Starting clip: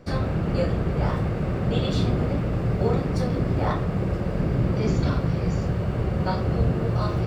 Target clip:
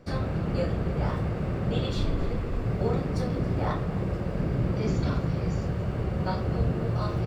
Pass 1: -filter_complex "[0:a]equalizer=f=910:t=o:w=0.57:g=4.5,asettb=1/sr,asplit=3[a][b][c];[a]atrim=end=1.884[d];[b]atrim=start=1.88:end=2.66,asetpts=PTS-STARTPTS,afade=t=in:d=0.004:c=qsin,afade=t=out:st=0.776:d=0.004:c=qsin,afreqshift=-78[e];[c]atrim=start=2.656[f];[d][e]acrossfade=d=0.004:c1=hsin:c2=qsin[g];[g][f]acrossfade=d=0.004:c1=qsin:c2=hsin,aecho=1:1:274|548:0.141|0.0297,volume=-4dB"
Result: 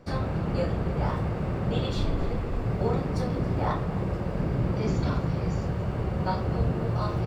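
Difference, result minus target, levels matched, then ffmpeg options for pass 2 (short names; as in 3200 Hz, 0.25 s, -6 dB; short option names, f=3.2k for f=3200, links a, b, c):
1000 Hz band +2.5 dB
-filter_complex "[0:a]asettb=1/sr,asplit=3[a][b][c];[a]atrim=end=1.884[d];[b]atrim=start=1.88:end=2.66,asetpts=PTS-STARTPTS,afade=t=in:d=0.004:c=qsin,afade=t=out:st=0.776:d=0.004:c=qsin,afreqshift=-78[e];[c]atrim=start=2.656[f];[d][e]acrossfade=d=0.004:c1=hsin:c2=qsin[g];[g][f]acrossfade=d=0.004:c1=qsin:c2=hsin,aecho=1:1:274|548:0.141|0.0297,volume=-4dB"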